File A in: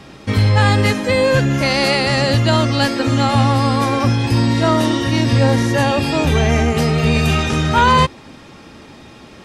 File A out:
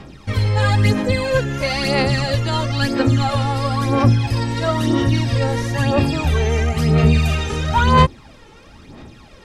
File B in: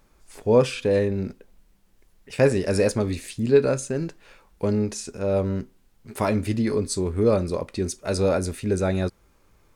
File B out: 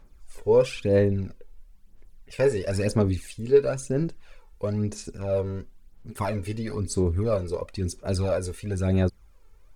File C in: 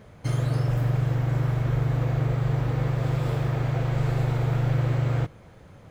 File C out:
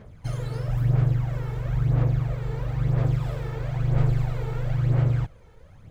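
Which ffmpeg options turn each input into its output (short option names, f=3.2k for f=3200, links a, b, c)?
-af "aphaser=in_gain=1:out_gain=1:delay=2.3:decay=0.59:speed=1:type=sinusoidal,lowshelf=f=63:g=10.5,volume=-6.5dB"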